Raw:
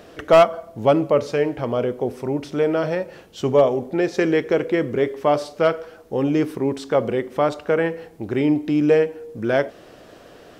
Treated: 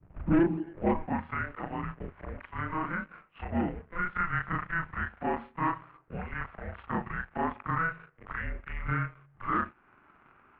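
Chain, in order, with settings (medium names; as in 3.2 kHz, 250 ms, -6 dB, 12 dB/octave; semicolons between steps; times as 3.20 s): short-time spectra conjugated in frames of 80 ms; band-pass sweep 200 Hz -> 1.7 kHz, 0.02–1.14 s; waveshaping leveller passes 2; mistuned SSB -340 Hz 180–2900 Hz; in parallel at +0.5 dB: compression, threshold -41 dBFS, peak gain reduction 22.5 dB; on the sum: trim -4 dB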